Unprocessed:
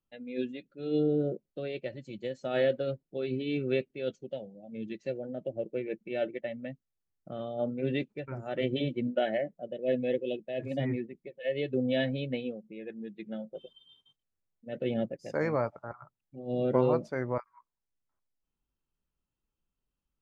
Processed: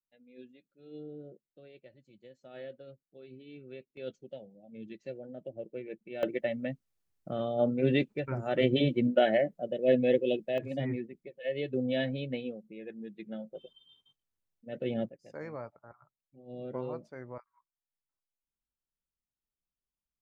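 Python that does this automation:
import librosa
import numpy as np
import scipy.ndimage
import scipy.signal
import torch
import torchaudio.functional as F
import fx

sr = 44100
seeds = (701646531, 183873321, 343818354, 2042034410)

y = fx.gain(x, sr, db=fx.steps((0.0, -17.5), (3.97, -6.5), (6.23, 4.5), (10.58, -2.0), (15.09, -12.0)))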